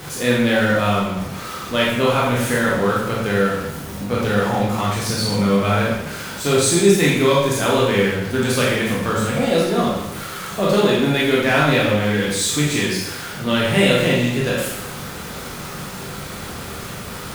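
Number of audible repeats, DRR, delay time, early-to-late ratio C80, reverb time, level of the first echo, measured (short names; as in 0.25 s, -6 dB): none, -6.0 dB, none, 3.5 dB, 0.95 s, none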